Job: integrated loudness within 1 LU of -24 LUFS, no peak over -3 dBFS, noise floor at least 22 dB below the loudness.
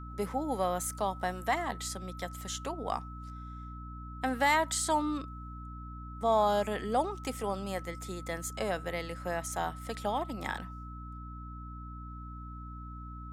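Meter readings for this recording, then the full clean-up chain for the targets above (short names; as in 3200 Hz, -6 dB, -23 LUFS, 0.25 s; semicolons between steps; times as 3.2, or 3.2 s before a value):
hum 60 Hz; harmonics up to 300 Hz; hum level -41 dBFS; steady tone 1300 Hz; tone level -47 dBFS; loudness -33.0 LUFS; peak -14.5 dBFS; loudness target -24.0 LUFS
-> de-hum 60 Hz, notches 5; notch 1300 Hz, Q 30; gain +9 dB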